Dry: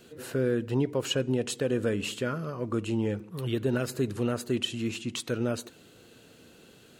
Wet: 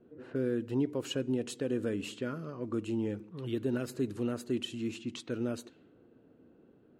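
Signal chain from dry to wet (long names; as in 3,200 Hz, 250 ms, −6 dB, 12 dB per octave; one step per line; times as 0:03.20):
low-pass that shuts in the quiet parts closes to 860 Hz, open at −27 dBFS
parametric band 290 Hz +7.5 dB 0.84 octaves
level −8.5 dB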